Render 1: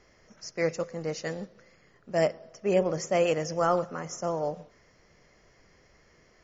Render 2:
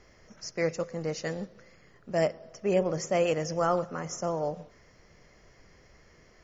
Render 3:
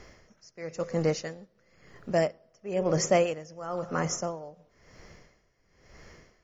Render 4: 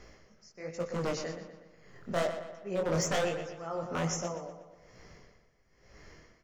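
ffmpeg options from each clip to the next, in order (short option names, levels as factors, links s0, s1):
-filter_complex "[0:a]lowshelf=f=130:g=4.5,asplit=2[s0][s1];[s1]acompressor=threshold=0.02:ratio=6,volume=0.708[s2];[s0][s2]amix=inputs=2:normalize=0,volume=0.708"
-af "aeval=exprs='val(0)*pow(10,-22*(0.5-0.5*cos(2*PI*0.99*n/s))/20)':c=same,volume=2.37"
-filter_complex "[0:a]aeval=exprs='0.0891*(abs(mod(val(0)/0.0891+3,4)-2)-1)':c=same,flanger=delay=17:depth=7.7:speed=1.2,asplit=2[s0][s1];[s1]adelay=121,lowpass=f=4700:p=1,volume=0.355,asplit=2[s2][s3];[s3]adelay=121,lowpass=f=4700:p=1,volume=0.52,asplit=2[s4][s5];[s5]adelay=121,lowpass=f=4700:p=1,volume=0.52,asplit=2[s6][s7];[s7]adelay=121,lowpass=f=4700:p=1,volume=0.52,asplit=2[s8][s9];[s9]adelay=121,lowpass=f=4700:p=1,volume=0.52,asplit=2[s10][s11];[s11]adelay=121,lowpass=f=4700:p=1,volume=0.52[s12];[s0][s2][s4][s6][s8][s10][s12]amix=inputs=7:normalize=0"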